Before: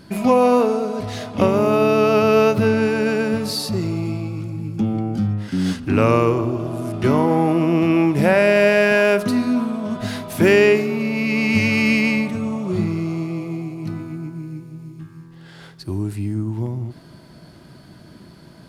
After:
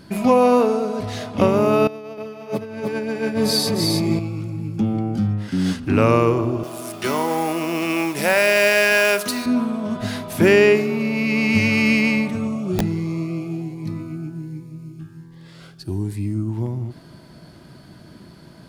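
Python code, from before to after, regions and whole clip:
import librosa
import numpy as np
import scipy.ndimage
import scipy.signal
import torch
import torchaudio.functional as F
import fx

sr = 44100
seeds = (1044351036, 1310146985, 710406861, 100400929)

y = fx.chain(x, sr, fx.over_compress(threshold_db=-23.0, ratio=-0.5),
    fx.notch_comb(f0_hz=1400.0),
    fx.echo_single(ms=305, db=-3.0), at=(1.87, 4.19))
y = fx.chain(y, sr, fx.highpass(hz=640.0, slope=6),
    fx.high_shelf(hz=3400.0, db=11.0),
    fx.mod_noise(seeds[0], snr_db=19), at=(6.63, 9.46))
y = fx.chain(y, sr, fx.overflow_wrap(gain_db=11.5),
    fx.notch_cascade(direction='rising', hz=1.3), at=(12.47, 16.49))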